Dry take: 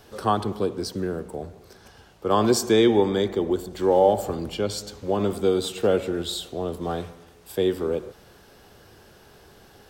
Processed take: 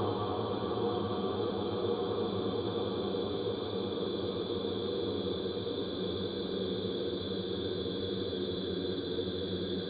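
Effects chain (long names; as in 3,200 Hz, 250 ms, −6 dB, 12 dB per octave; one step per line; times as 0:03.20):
hearing-aid frequency compression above 3,100 Hz 4 to 1
extreme stretch with random phases 30×, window 1.00 s, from 0:00.58
level −7 dB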